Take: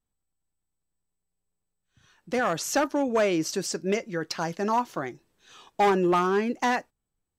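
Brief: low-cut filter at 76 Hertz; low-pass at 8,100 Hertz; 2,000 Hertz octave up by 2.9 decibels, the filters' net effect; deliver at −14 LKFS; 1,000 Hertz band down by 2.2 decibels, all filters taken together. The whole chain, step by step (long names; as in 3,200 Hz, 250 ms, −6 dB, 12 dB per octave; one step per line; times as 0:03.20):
high-pass filter 76 Hz
low-pass filter 8,100 Hz
parametric band 1,000 Hz −4 dB
parametric band 2,000 Hz +5 dB
level +12.5 dB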